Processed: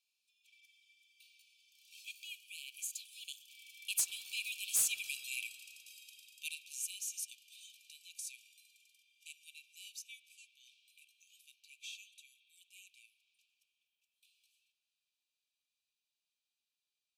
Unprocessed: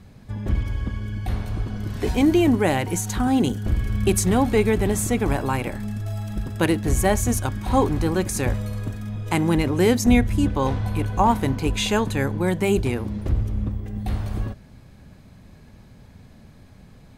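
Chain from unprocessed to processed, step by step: Doppler pass-by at 5.02 s, 16 m/s, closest 8.8 m; brick-wall FIR high-pass 2.3 kHz; wavefolder -23.5 dBFS; spring tank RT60 2.9 s, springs 52 ms, chirp 20 ms, DRR 13 dB

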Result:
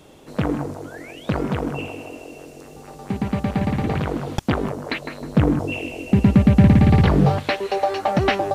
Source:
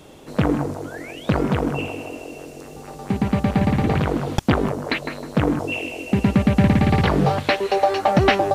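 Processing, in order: 5.21–7.38 s: bass shelf 290 Hz +9 dB; trim -3 dB

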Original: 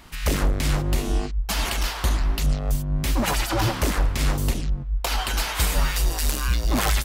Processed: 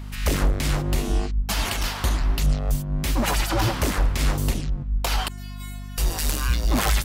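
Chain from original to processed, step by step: 5.28–5.98 s: inharmonic resonator 350 Hz, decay 0.69 s, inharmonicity 0.002; hum 50 Hz, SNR 12 dB

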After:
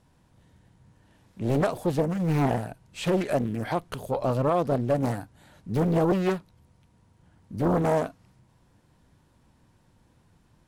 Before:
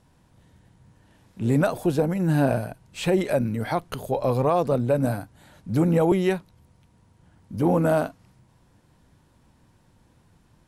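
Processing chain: loudspeaker Doppler distortion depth 0.9 ms; trim -2.5 dB

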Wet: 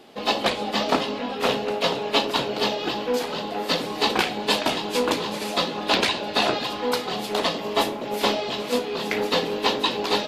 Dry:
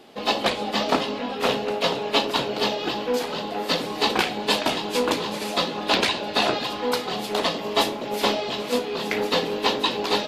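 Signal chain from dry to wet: 7.60–8.21 s: dynamic bell 4.8 kHz, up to -4 dB, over -38 dBFS, Q 0.76

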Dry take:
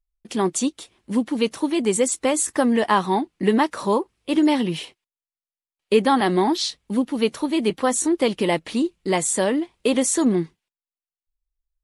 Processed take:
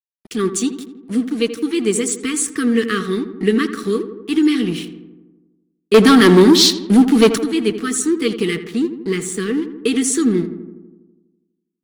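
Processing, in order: FFT band-reject 490–1100 Hz; 5.94–7.38 s: waveshaping leveller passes 3; 8.55–9.58 s: treble shelf 2.7 kHz -6.5 dB; crossover distortion -42 dBFS; filtered feedback delay 82 ms, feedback 67%, low-pass 1.9 kHz, level -11 dB; trim +3.5 dB

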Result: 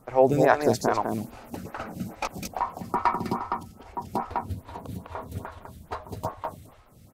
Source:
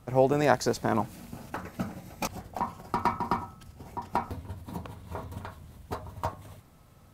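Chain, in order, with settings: on a send: delay 203 ms -4.5 dB; on the sum: lamp-driven phase shifter 2.4 Hz; trim +4.5 dB

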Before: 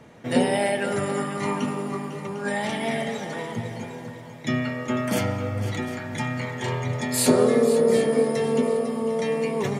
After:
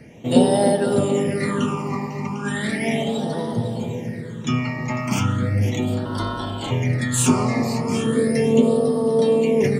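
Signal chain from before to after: 6.05–6.71 s: ring modulator 1.2 kHz; phase shifter stages 8, 0.36 Hz, lowest notch 440–2300 Hz; bucket-brigade echo 302 ms, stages 1024, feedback 72%, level -7 dB; trim +6 dB

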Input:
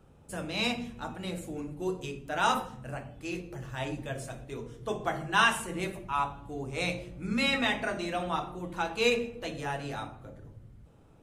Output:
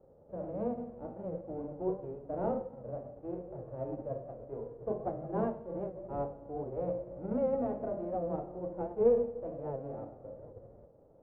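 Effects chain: formants flattened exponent 0.3; four-pole ladder low-pass 620 Hz, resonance 60%; warped record 78 rpm, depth 100 cents; trim +8 dB

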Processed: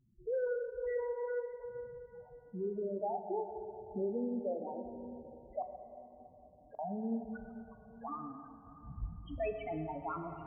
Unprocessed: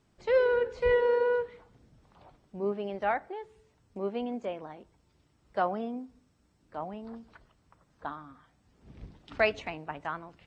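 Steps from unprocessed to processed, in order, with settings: in parallel at +2 dB: compression, threshold -39 dBFS, peak gain reduction 18 dB; on the sum: peak limiter -23 dBFS, peak gain reduction 11.5 dB; gain riding 0.5 s; loudest bins only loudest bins 4; 5.62–6.79 s: inverted gate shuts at -37 dBFS, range -34 dB; plate-style reverb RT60 3.9 s, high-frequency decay 0.5×, DRR 6 dB; trim -2.5 dB

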